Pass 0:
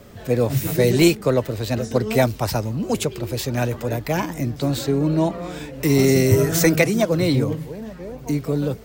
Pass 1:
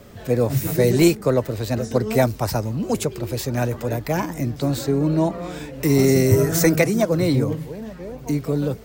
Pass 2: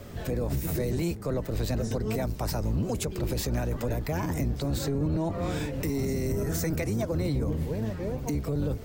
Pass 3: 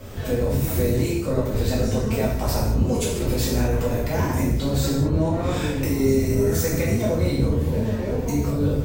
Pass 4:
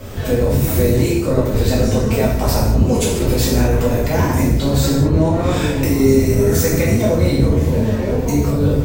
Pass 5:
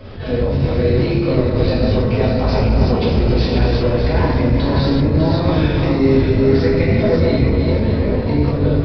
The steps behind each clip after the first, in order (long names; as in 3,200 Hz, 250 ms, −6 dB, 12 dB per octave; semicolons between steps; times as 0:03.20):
dynamic equaliser 3,100 Hz, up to −6 dB, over −42 dBFS, Q 1.5
sub-octave generator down 1 octave, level +1 dB; downward compressor 6 to 1, threshold −22 dBFS, peak gain reduction 14 dB; brickwall limiter −20.5 dBFS, peak gain reduction 8 dB
reverb whose tail is shaped and stops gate 250 ms falling, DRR −6.5 dB
echo through a band-pass that steps 256 ms, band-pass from 310 Hz, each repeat 1.4 octaves, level −11 dB; level +6.5 dB
feedback delay that plays each chunk backwards 300 ms, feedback 54%, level −3 dB; downsampling to 11,025 Hz; level that may rise only so fast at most 130 dB per second; level −2 dB